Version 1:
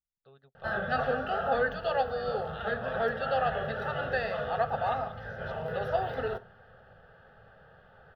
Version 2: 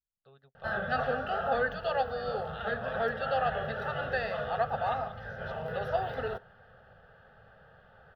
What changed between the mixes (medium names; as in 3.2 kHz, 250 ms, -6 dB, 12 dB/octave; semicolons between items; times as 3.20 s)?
background: send -7.0 dB; master: add peaking EQ 320 Hz -3.5 dB 0.82 oct